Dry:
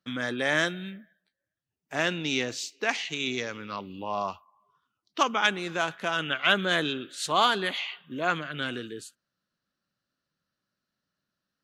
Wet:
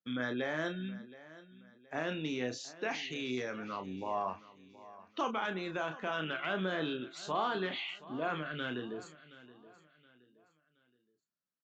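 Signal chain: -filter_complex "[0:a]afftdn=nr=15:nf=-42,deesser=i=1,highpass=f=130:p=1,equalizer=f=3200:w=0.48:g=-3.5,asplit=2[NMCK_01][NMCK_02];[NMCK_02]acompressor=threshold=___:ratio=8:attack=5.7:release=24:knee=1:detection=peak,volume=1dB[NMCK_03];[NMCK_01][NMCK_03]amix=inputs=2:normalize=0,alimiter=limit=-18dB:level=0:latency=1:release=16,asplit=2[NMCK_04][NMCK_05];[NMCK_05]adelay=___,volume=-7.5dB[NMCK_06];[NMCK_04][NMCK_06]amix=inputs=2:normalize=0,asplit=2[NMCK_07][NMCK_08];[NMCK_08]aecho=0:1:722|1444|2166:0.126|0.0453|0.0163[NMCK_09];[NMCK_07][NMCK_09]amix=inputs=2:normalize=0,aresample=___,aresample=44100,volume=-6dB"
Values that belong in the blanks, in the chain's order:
-45dB, 32, 16000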